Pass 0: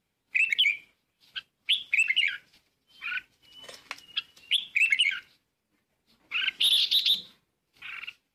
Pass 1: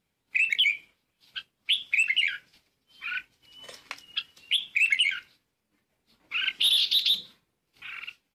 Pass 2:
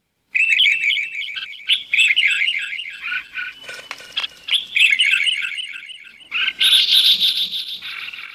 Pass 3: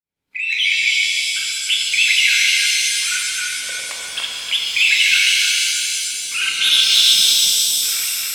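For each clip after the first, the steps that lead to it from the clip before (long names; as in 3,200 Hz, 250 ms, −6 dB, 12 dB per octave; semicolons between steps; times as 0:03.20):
double-tracking delay 24 ms −13.5 dB
feedback delay that plays each chunk backwards 156 ms, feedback 61%, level −2 dB; level +7.5 dB
fade in at the beginning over 0.84 s; reverb with rising layers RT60 2.7 s, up +7 semitones, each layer −2 dB, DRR −1 dB; level −3 dB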